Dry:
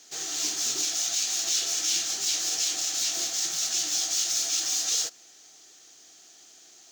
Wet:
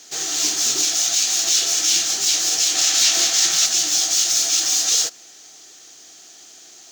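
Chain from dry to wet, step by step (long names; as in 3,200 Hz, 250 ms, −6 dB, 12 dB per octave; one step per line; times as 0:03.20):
0:02.75–0:03.66: parametric band 2,200 Hz +6 dB 2.9 octaves
level +8.5 dB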